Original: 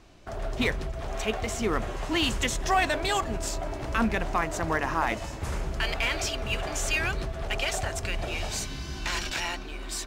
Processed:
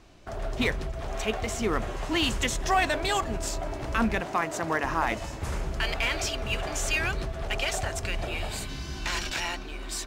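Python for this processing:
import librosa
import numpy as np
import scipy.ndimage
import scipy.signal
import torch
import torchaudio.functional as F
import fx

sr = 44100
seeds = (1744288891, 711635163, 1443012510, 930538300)

y = fx.highpass(x, sr, hz=150.0, slope=12, at=(4.2, 4.84))
y = fx.peak_eq(y, sr, hz=5900.0, db=-13.0, octaves=0.41, at=(8.27, 8.69))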